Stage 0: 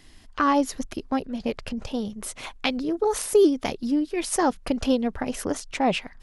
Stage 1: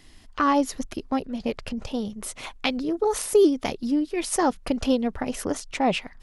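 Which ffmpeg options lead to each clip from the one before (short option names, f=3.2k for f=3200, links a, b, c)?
-af "bandreject=f=1.6k:w=26"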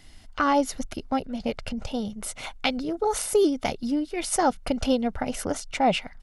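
-af "aecho=1:1:1.4:0.36"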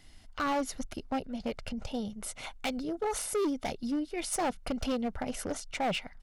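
-af "asoftclip=type=hard:threshold=-21dB,volume=-5.5dB"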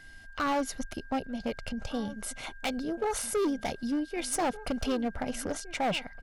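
-filter_complex "[0:a]aeval=exprs='val(0)+0.00251*sin(2*PI*1600*n/s)':c=same,asplit=2[a][b];[b]adelay=1516,volume=-15dB,highshelf=f=4k:g=-34.1[c];[a][c]amix=inputs=2:normalize=0,volume=1.5dB"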